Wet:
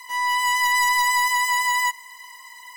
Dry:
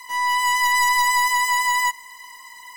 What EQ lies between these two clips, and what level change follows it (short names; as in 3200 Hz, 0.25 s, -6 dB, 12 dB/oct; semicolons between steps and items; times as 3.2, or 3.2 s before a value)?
tone controls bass -6 dB, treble -7 dB; high shelf 3300 Hz +9 dB; -2.5 dB